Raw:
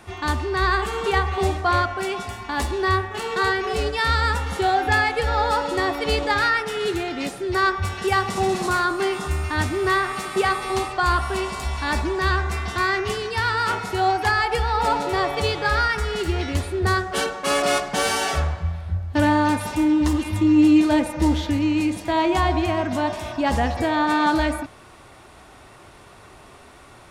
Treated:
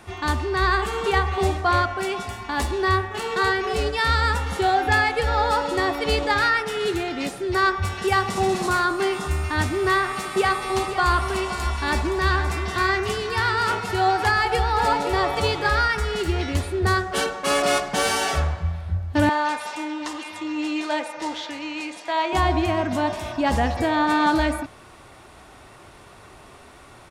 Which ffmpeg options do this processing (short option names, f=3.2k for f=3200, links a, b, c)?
-filter_complex "[0:a]asplit=3[a][b][c];[a]afade=t=out:st=10.74:d=0.02[d];[b]aecho=1:1:519:0.316,afade=t=in:st=10.74:d=0.02,afade=t=out:st=15.69:d=0.02[e];[c]afade=t=in:st=15.69:d=0.02[f];[d][e][f]amix=inputs=3:normalize=0,asettb=1/sr,asplit=3[g][h][i];[g]atrim=end=19.294[j];[h]atrim=start=19.29:end=22.33,asetpts=PTS-STARTPTS,afade=t=in:d=0.004:c=qsin,afade=t=out:st=3.036:d=0.004:c=qsin,highpass=630,lowpass=7.4k[k];[i]atrim=start=22.326[l];[j][k]acrossfade=d=0.004:c1=hsin:c2=qsin[m];[m][l]acrossfade=d=0.004:c1=qsin:c2=hsin"